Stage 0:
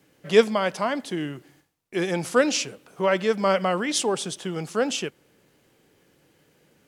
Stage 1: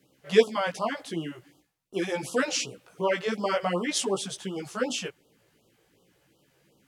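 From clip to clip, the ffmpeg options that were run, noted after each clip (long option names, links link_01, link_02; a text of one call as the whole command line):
ffmpeg -i in.wav -af "flanger=delay=15:depth=3.2:speed=0.45,afftfilt=real='re*(1-between(b*sr/1024,210*pow(2000/210,0.5+0.5*sin(2*PI*2.7*pts/sr))/1.41,210*pow(2000/210,0.5+0.5*sin(2*PI*2.7*pts/sr))*1.41))':imag='im*(1-between(b*sr/1024,210*pow(2000/210,0.5+0.5*sin(2*PI*2.7*pts/sr))/1.41,210*pow(2000/210,0.5+0.5*sin(2*PI*2.7*pts/sr))*1.41))':win_size=1024:overlap=0.75" out.wav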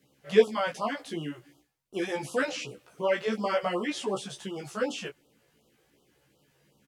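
ffmpeg -i in.wav -filter_complex "[0:a]acrossover=split=3000[link_01][link_02];[link_02]acompressor=threshold=-39dB:ratio=4:attack=1:release=60[link_03];[link_01][link_03]amix=inputs=2:normalize=0,asplit=2[link_04][link_05];[link_05]adelay=14,volume=-5dB[link_06];[link_04][link_06]amix=inputs=2:normalize=0,volume=-2.5dB" out.wav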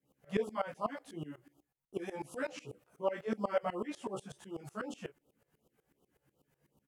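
ffmpeg -i in.wav -af "equalizer=frequency=4100:width_type=o:width=1.9:gain=-10.5,aeval=exprs='val(0)*pow(10,-20*if(lt(mod(-8.1*n/s,1),2*abs(-8.1)/1000),1-mod(-8.1*n/s,1)/(2*abs(-8.1)/1000),(mod(-8.1*n/s,1)-2*abs(-8.1)/1000)/(1-2*abs(-8.1)/1000))/20)':channel_layout=same" out.wav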